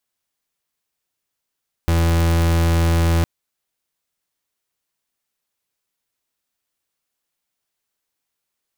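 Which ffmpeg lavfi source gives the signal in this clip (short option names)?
-f lavfi -i "aevalsrc='0.158*(2*lt(mod(83.5*t,1),0.37)-1)':d=1.36:s=44100"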